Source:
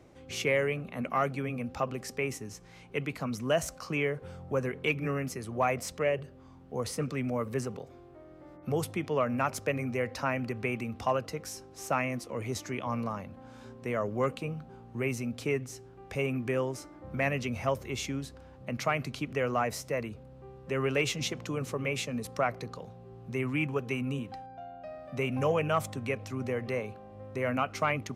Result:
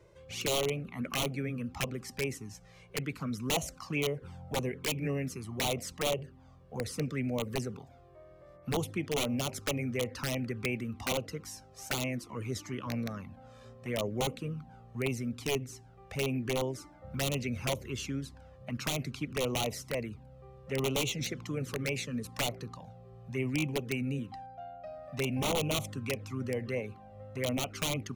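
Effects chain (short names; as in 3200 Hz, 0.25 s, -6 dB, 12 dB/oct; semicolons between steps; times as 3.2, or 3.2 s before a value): wrapped overs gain 21.5 dB; envelope flanger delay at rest 2.1 ms, full sweep at -26.5 dBFS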